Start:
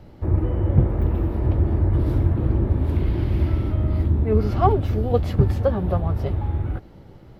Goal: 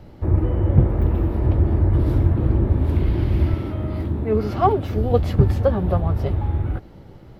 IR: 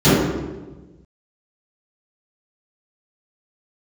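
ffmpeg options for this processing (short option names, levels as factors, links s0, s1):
-filter_complex "[0:a]asettb=1/sr,asplit=3[s0][s1][s2];[s0]atrim=end=3.544[s3];[s1]atrim=start=3.54:end=4.96,asetpts=PTS-STARTPTS,afade=t=in:d=0.004:c=qsin,afade=t=out:st=1.416:d=0.004:c=qsin,highpass=f=170:p=1[s4];[s2]atrim=start=4.956[s5];[s3][s4]acrossfade=d=0.004:c1=hsin:c2=qsin[s6];[s6][s5]acrossfade=d=0.004:c1=qsin:c2=hsin,volume=1.26"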